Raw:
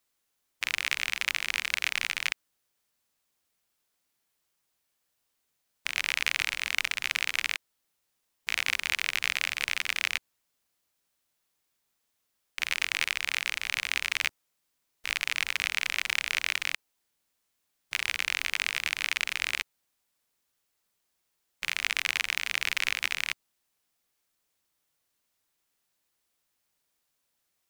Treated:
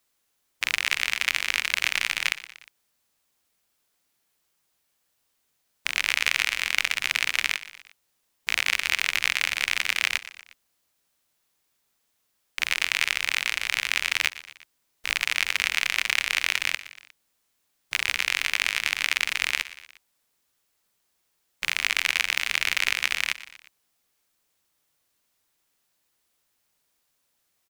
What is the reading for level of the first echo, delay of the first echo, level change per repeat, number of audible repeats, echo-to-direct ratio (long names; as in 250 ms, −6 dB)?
−16.5 dB, 119 ms, −5.0 dB, 3, −15.0 dB